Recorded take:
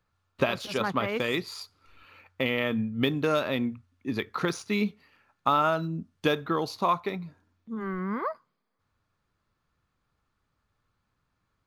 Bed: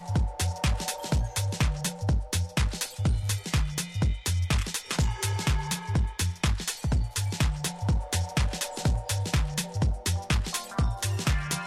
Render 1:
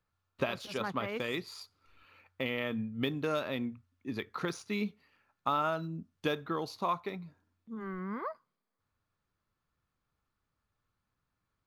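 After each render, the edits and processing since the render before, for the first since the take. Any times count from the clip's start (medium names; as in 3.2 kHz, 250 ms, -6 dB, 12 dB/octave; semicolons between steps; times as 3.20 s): trim -7 dB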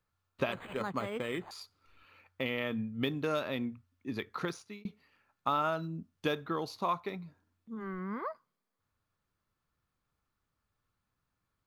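0.52–1.51 s: decimation joined by straight lines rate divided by 8×; 4.42–4.85 s: fade out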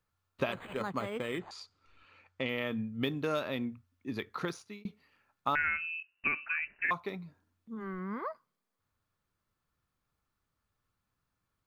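1.39–2.49 s: low-pass 8.1 kHz 24 dB/octave; 5.55–6.91 s: frequency inversion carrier 2.8 kHz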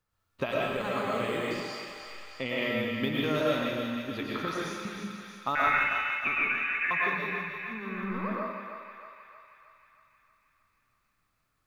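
thinning echo 314 ms, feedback 66%, high-pass 660 Hz, level -6.5 dB; algorithmic reverb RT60 0.97 s, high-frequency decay 1×, pre-delay 75 ms, DRR -4 dB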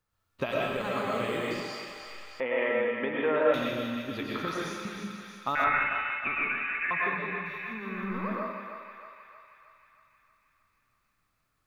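2.40–3.54 s: cabinet simulation 310–2400 Hz, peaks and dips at 490 Hz +8 dB, 900 Hz +9 dB, 1.7 kHz +6 dB; 5.64–7.46 s: low-pass 2.6 kHz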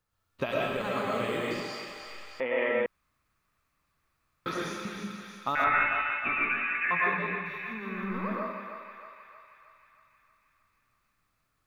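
2.86–4.46 s: room tone; 5.70–7.35 s: doubling 17 ms -4.5 dB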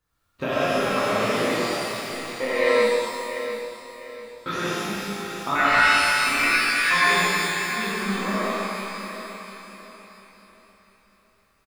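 feedback delay 695 ms, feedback 35%, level -10.5 dB; pitch-shifted reverb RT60 1.3 s, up +12 st, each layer -8 dB, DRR -6.5 dB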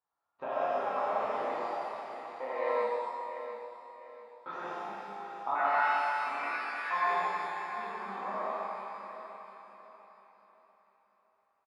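band-pass filter 830 Hz, Q 3.7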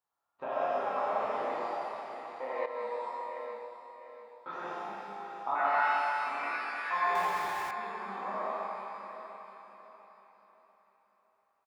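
2.66–3.15 s: fade in, from -12.5 dB; 7.15–7.71 s: jump at every zero crossing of -38.5 dBFS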